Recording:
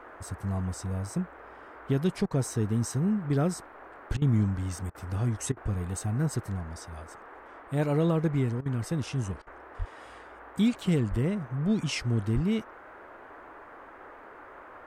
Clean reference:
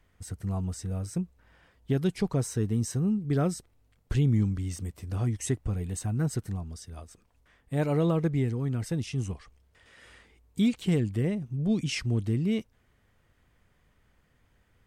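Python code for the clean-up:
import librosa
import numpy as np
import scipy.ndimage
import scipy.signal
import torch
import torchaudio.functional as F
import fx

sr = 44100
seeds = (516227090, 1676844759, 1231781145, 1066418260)

y = fx.highpass(x, sr, hz=140.0, slope=24, at=(9.78, 9.9), fade=0.02)
y = fx.highpass(y, sr, hz=140.0, slope=24, at=(11.1, 11.22), fade=0.02)
y = fx.highpass(y, sr, hz=140.0, slope=24, at=(12.34, 12.46), fade=0.02)
y = fx.fix_interpolate(y, sr, at_s=(2.26, 4.17, 4.9, 5.52, 8.61, 9.42), length_ms=46.0)
y = fx.noise_reduce(y, sr, print_start_s=12.8, print_end_s=13.3, reduce_db=18.0)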